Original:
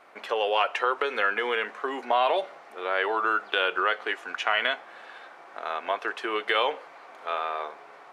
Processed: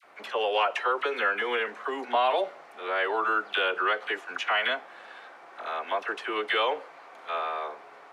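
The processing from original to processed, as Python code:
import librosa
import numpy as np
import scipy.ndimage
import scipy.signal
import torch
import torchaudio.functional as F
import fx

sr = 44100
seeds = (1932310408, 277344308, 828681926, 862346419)

y = fx.dispersion(x, sr, late='lows', ms=45.0, hz=1100.0)
y = y * librosa.db_to_amplitude(-1.0)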